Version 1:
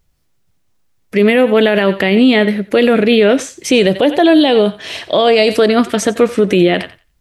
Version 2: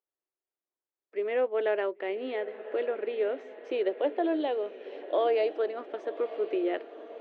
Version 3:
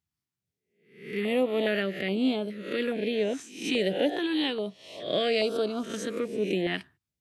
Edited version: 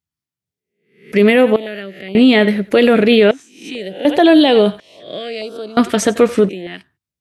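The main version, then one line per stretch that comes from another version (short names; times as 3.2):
3
1.12–1.56 from 1
2.15–3.31 from 1
4.05–4.8 from 1
5.77–6.49 from 1
not used: 2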